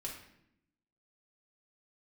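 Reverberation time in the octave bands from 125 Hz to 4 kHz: 1.1, 1.2, 0.80, 0.70, 0.75, 0.60 seconds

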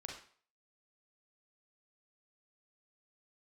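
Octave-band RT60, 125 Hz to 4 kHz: 0.40, 0.40, 0.45, 0.50, 0.45, 0.45 seconds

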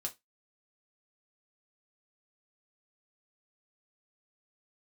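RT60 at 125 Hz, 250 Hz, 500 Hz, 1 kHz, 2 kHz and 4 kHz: 0.15, 0.20, 0.15, 0.15, 0.15, 0.20 seconds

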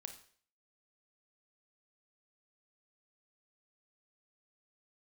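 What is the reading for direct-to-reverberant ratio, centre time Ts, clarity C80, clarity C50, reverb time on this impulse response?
6.5 dB, 12 ms, 14.0 dB, 9.5 dB, 0.50 s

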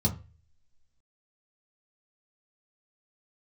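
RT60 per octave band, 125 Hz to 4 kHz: 0.55, 0.30, 0.35, 0.30, 0.35, 0.25 seconds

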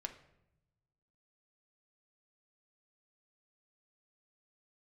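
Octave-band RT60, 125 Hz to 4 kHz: 1.6, 1.3, 0.95, 0.75, 0.70, 0.55 seconds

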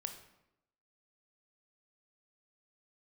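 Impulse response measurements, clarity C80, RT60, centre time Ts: 11.5 dB, 0.85 s, 16 ms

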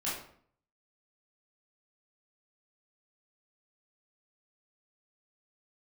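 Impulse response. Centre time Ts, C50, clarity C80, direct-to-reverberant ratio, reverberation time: 49 ms, 2.5 dB, 7.5 dB, −9.0 dB, 0.55 s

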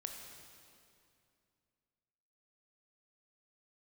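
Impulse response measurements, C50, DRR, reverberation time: 4.0 dB, 2.5 dB, 2.5 s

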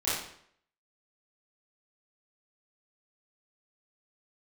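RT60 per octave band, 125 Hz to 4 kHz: 0.65, 0.65, 0.65, 0.65, 0.60, 0.55 seconds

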